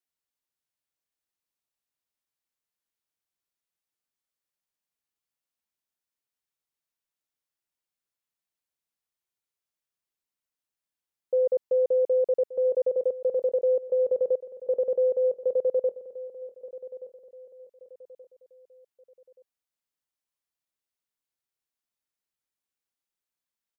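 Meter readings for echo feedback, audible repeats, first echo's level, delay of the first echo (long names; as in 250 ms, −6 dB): 37%, 3, −15.5 dB, 1,177 ms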